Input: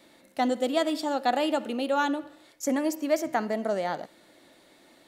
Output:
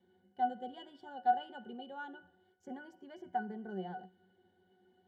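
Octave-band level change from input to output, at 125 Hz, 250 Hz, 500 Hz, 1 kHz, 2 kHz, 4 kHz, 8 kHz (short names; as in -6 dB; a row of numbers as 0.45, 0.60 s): n/a, -17.5 dB, -18.5 dB, -6.0 dB, -13.5 dB, -18.0 dB, under -35 dB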